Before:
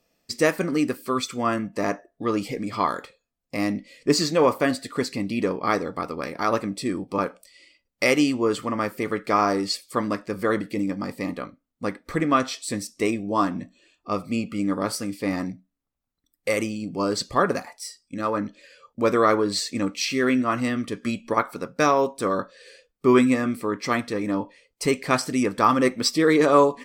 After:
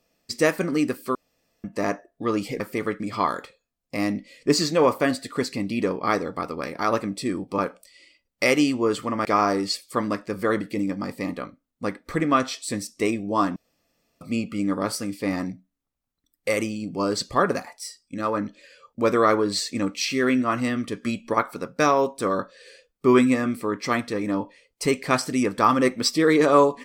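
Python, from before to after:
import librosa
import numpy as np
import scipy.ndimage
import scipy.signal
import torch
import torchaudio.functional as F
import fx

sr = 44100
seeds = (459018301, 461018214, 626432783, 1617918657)

y = fx.edit(x, sr, fx.room_tone_fill(start_s=1.15, length_s=0.49),
    fx.move(start_s=8.85, length_s=0.4, to_s=2.6),
    fx.room_tone_fill(start_s=13.56, length_s=0.65), tone=tone)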